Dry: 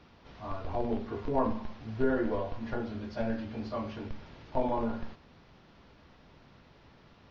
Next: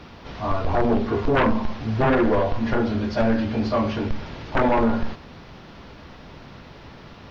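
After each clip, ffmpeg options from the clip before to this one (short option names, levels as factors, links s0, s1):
-af "aeval=exprs='0.188*sin(PI/2*3.55*val(0)/0.188)':c=same"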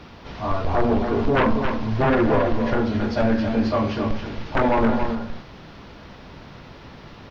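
-af "aecho=1:1:273:0.447"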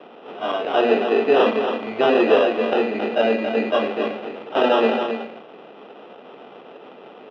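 -af "acrusher=samples=20:mix=1:aa=0.000001,highpass=f=270:w=0.5412,highpass=f=270:w=1.3066,equalizer=f=300:t=q:w=4:g=-4,equalizer=f=440:t=q:w=4:g=6,equalizer=f=720:t=q:w=4:g=4,equalizer=f=1000:t=q:w=4:g=-6,equalizer=f=1700:t=q:w=4:g=-7,equalizer=f=2600:t=q:w=4:g=4,lowpass=f=3000:w=0.5412,lowpass=f=3000:w=1.3066,volume=1.41"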